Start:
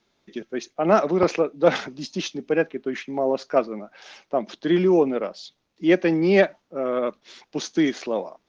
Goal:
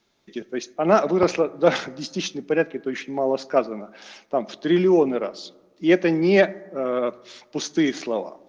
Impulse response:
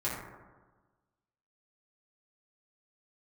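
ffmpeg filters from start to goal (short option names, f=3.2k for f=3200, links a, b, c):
-filter_complex "[0:a]highshelf=f=6k:g=5,asplit=2[a][b];[1:a]atrim=start_sample=2205[c];[b][c]afir=irnorm=-1:irlink=0,volume=-24dB[d];[a][d]amix=inputs=2:normalize=0"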